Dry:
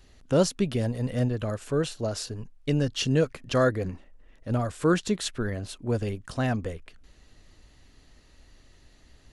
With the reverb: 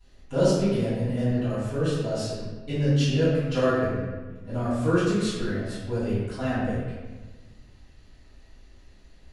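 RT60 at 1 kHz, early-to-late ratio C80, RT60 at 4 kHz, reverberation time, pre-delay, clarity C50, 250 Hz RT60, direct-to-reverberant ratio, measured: 1.2 s, 0.5 dB, 0.90 s, 1.3 s, 4 ms, -2.0 dB, 1.7 s, -15.0 dB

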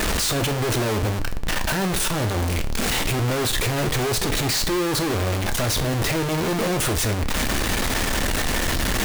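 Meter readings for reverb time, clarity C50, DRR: 0.40 s, 15.0 dB, 8.0 dB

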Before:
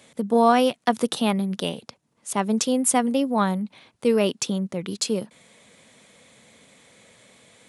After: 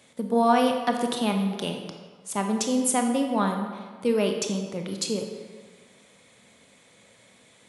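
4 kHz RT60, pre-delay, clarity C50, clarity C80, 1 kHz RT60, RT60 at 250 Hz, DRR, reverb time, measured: 1.1 s, 20 ms, 5.0 dB, 7.0 dB, 1.6 s, 1.5 s, 3.5 dB, 1.5 s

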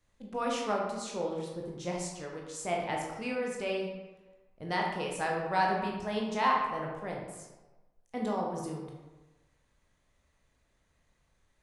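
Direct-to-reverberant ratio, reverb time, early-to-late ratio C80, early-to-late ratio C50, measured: -1.5 dB, 1.2 s, 5.0 dB, 2.0 dB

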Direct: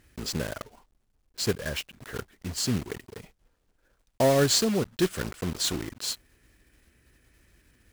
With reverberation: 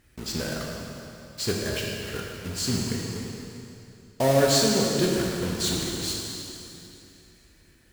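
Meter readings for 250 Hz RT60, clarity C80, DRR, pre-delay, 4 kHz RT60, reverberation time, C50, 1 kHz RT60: 3.1 s, 1.0 dB, -2.0 dB, 12 ms, 2.6 s, 2.8 s, 0.0 dB, 2.8 s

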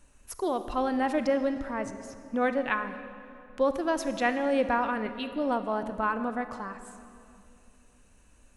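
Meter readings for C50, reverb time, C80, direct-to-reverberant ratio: 10.0 dB, 2.6 s, 11.0 dB, 9.5 dB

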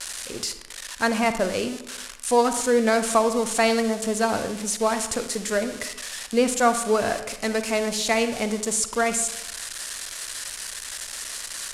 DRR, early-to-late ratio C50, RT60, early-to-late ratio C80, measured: 9.0 dB, 10.0 dB, 0.90 s, 12.5 dB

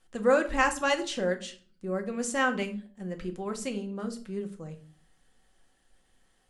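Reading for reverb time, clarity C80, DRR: 0.45 s, 18.5 dB, 4.0 dB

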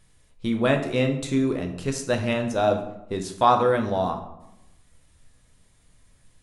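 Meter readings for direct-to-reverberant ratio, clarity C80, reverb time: 4.0 dB, 12.0 dB, 0.90 s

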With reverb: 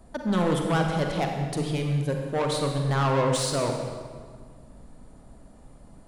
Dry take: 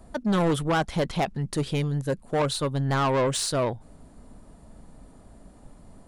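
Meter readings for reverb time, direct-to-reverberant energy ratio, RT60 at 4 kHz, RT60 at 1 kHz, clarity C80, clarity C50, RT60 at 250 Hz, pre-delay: 1.7 s, 2.5 dB, 1.3 s, 1.7 s, 4.5 dB, 3.0 dB, 2.1 s, 37 ms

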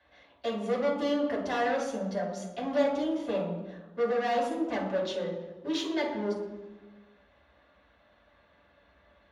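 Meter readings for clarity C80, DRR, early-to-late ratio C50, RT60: 6.5 dB, -6.5 dB, 3.5 dB, 1.2 s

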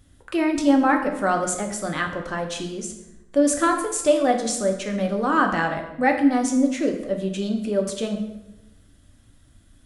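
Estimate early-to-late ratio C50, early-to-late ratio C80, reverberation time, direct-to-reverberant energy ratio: 7.5 dB, 10.0 dB, 0.95 s, 2.5 dB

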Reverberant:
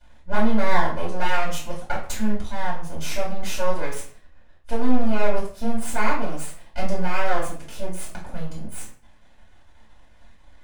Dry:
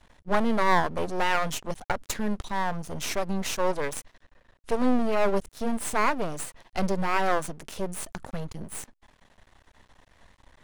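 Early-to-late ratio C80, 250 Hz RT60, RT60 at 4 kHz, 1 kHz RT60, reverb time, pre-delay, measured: 10.5 dB, 0.60 s, 0.35 s, 0.45 s, 0.45 s, 3 ms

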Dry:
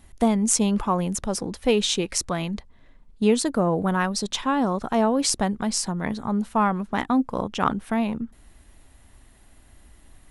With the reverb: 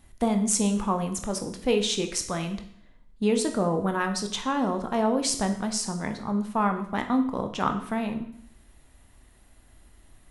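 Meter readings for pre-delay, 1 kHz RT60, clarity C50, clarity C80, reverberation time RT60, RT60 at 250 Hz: 14 ms, 0.65 s, 10.0 dB, 12.5 dB, 0.65 s, 0.65 s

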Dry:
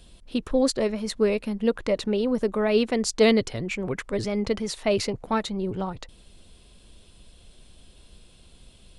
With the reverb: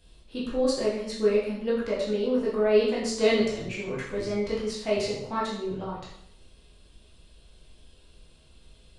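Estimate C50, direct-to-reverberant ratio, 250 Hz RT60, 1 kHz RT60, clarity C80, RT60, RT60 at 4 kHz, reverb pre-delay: 2.5 dB, -7.0 dB, 0.70 s, 0.65 s, 6.0 dB, 0.70 s, 0.65 s, 10 ms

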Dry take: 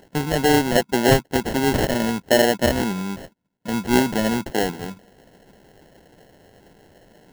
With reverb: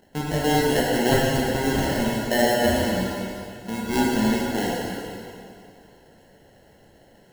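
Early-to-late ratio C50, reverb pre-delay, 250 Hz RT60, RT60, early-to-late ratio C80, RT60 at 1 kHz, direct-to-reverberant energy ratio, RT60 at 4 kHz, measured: -1.5 dB, 5 ms, 2.4 s, 2.4 s, 0.0 dB, 2.4 s, -4.5 dB, 2.2 s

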